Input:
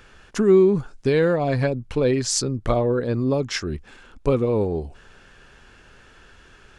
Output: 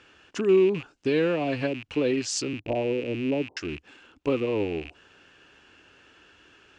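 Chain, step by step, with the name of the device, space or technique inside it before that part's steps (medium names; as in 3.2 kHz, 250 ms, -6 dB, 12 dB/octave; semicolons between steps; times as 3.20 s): 2.53–3.57 s: steep low-pass 950 Hz 96 dB/octave; car door speaker with a rattle (rattle on loud lows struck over -38 dBFS, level -26 dBFS; cabinet simulation 100–7900 Hz, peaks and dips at 130 Hz -6 dB, 210 Hz -5 dB, 300 Hz +8 dB, 2.8 kHz +8 dB); trim -6 dB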